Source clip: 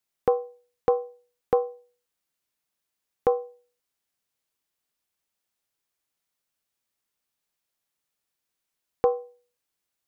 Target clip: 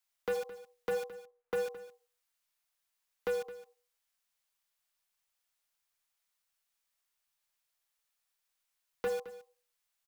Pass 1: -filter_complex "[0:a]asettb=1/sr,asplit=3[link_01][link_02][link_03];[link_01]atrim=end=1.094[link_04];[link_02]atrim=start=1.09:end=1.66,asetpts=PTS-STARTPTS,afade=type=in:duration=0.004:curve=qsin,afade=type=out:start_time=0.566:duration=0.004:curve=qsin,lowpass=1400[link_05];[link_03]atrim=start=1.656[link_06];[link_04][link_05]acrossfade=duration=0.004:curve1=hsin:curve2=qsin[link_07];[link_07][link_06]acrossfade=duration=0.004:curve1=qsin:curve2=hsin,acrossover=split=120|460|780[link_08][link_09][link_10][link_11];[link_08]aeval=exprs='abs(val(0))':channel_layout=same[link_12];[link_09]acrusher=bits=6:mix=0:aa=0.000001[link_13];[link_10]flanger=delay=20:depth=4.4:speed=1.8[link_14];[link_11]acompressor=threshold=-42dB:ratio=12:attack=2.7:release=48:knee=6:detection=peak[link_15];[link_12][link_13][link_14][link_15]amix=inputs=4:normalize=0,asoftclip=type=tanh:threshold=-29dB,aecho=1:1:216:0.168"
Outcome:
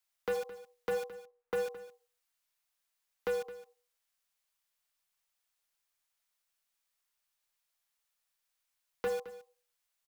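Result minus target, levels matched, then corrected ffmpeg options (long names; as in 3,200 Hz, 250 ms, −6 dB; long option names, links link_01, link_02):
downward compressor: peak gain reduction −6 dB
-filter_complex "[0:a]asettb=1/sr,asplit=3[link_01][link_02][link_03];[link_01]atrim=end=1.094[link_04];[link_02]atrim=start=1.09:end=1.66,asetpts=PTS-STARTPTS,afade=type=in:duration=0.004:curve=qsin,afade=type=out:start_time=0.566:duration=0.004:curve=qsin,lowpass=1400[link_05];[link_03]atrim=start=1.656[link_06];[link_04][link_05]acrossfade=duration=0.004:curve1=hsin:curve2=qsin[link_07];[link_07][link_06]acrossfade=duration=0.004:curve1=qsin:curve2=hsin,acrossover=split=120|460|780[link_08][link_09][link_10][link_11];[link_08]aeval=exprs='abs(val(0))':channel_layout=same[link_12];[link_09]acrusher=bits=6:mix=0:aa=0.000001[link_13];[link_10]flanger=delay=20:depth=4.4:speed=1.8[link_14];[link_11]acompressor=threshold=-48.5dB:ratio=12:attack=2.7:release=48:knee=6:detection=peak[link_15];[link_12][link_13][link_14][link_15]amix=inputs=4:normalize=0,asoftclip=type=tanh:threshold=-29dB,aecho=1:1:216:0.168"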